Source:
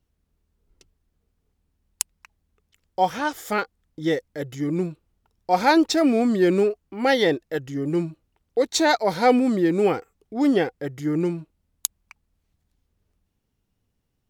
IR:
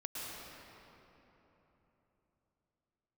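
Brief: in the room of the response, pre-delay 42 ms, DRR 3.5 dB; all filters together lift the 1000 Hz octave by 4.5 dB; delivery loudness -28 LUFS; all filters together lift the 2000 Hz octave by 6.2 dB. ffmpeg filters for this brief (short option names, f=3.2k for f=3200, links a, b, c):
-filter_complex "[0:a]equalizer=f=1k:t=o:g=5,equalizer=f=2k:t=o:g=6,asplit=2[a][b];[1:a]atrim=start_sample=2205,adelay=42[c];[b][c]afir=irnorm=-1:irlink=0,volume=-4.5dB[d];[a][d]amix=inputs=2:normalize=0,volume=-9dB"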